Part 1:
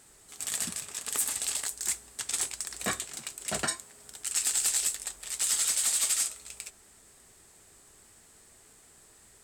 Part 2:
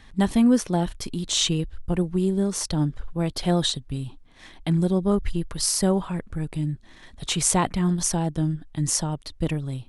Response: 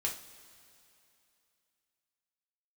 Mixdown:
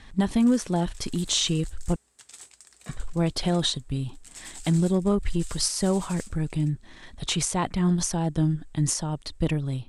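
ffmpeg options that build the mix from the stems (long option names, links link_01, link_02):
-filter_complex "[0:a]volume=-14.5dB[link_01];[1:a]alimiter=limit=-14dB:level=0:latency=1:release=303,aeval=exprs='0.2*(cos(1*acos(clip(val(0)/0.2,-1,1)))-cos(1*PI/2))+0.00316*(cos(5*acos(clip(val(0)/0.2,-1,1)))-cos(5*PI/2))':channel_layout=same,volume=1dB,asplit=3[link_02][link_03][link_04];[link_02]atrim=end=1.96,asetpts=PTS-STARTPTS,afade=type=out:start_time=1.956:duration=0.004:curve=hsin[link_05];[link_03]atrim=start=1.96:end=2.89,asetpts=PTS-STARTPTS,volume=0[link_06];[link_04]atrim=start=2.89,asetpts=PTS-STARTPTS,afade=type=in:duration=0.004:curve=hsin[link_07];[link_05][link_06][link_07]concat=n=3:v=0:a=1[link_08];[link_01][link_08]amix=inputs=2:normalize=0,lowpass=10000"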